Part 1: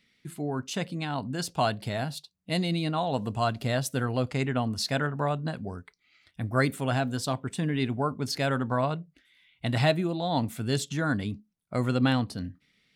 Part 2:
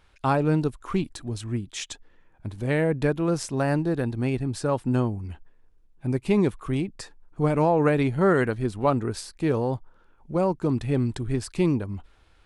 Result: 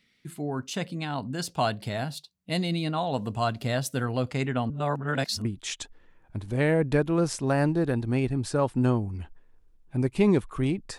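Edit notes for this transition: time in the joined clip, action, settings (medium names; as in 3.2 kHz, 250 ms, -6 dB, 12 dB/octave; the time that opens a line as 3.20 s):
part 1
4.70–5.45 s: reverse
5.45 s: go over to part 2 from 1.55 s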